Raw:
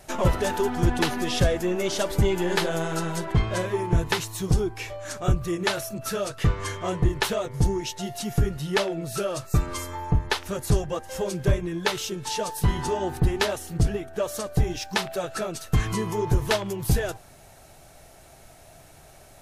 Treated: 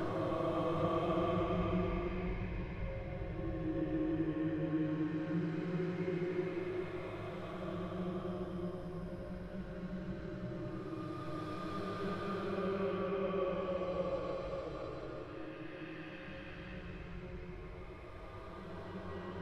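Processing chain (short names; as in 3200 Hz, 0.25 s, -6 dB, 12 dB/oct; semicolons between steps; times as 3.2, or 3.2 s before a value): Doppler pass-by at 3.91, 32 m/s, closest 5.3 m; auto swell 0.478 s; air absorption 420 m; swung echo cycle 0.932 s, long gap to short 1.5:1, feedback 46%, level -12 dB; Paulstretch 12×, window 0.25 s, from 4.86; gain +13 dB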